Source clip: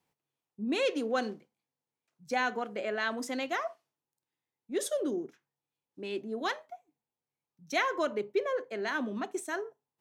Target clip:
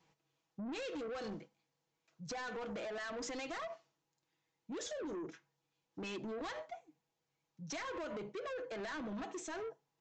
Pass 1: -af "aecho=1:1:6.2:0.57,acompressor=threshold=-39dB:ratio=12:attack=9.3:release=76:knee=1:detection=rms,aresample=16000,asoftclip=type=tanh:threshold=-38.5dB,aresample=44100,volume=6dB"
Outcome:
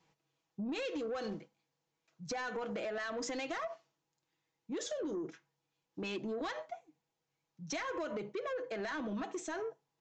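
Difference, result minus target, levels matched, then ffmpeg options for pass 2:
soft clipping: distortion −7 dB
-af "aecho=1:1:6.2:0.57,acompressor=threshold=-39dB:ratio=12:attack=9.3:release=76:knee=1:detection=rms,aresample=16000,asoftclip=type=tanh:threshold=-45.5dB,aresample=44100,volume=6dB"

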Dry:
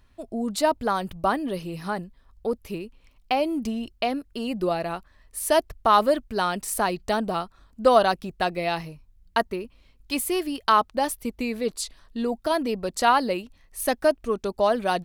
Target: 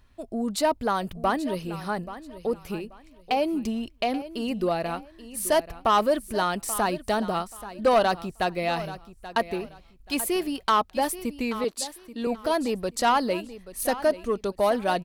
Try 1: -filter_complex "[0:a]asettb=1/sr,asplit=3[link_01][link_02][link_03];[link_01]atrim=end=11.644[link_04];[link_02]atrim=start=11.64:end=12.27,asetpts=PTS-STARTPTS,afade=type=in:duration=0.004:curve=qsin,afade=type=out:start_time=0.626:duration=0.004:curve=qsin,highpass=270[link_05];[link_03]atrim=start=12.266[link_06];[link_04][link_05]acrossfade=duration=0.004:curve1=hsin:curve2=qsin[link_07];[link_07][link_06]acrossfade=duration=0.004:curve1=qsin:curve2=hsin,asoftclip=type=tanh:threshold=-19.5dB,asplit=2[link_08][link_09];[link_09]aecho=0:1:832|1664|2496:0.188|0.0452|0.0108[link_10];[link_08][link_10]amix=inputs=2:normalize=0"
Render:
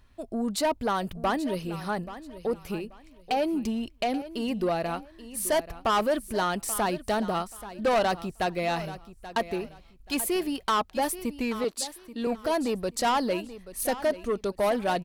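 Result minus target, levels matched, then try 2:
soft clipping: distortion +7 dB
-filter_complex "[0:a]asettb=1/sr,asplit=3[link_01][link_02][link_03];[link_01]atrim=end=11.644[link_04];[link_02]atrim=start=11.64:end=12.27,asetpts=PTS-STARTPTS,afade=type=in:duration=0.004:curve=qsin,afade=type=out:start_time=0.626:duration=0.004:curve=qsin,highpass=270[link_05];[link_03]atrim=start=12.266[link_06];[link_04][link_05]acrossfade=duration=0.004:curve1=hsin:curve2=qsin[link_07];[link_07][link_06]acrossfade=duration=0.004:curve1=qsin:curve2=hsin,asoftclip=type=tanh:threshold=-13dB,asplit=2[link_08][link_09];[link_09]aecho=0:1:832|1664|2496:0.188|0.0452|0.0108[link_10];[link_08][link_10]amix=inputs=2:normalize=0"

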